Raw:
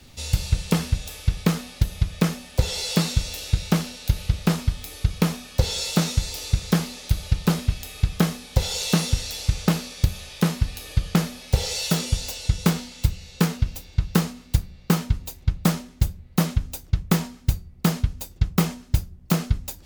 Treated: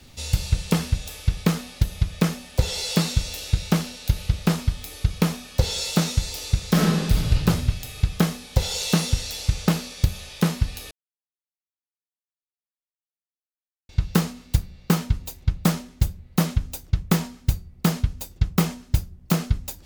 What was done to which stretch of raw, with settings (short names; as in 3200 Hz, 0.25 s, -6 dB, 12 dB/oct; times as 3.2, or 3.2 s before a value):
6.71–7.33 reverb throw, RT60 1.4 s, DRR -3.5 dB
10.91–13.89 mute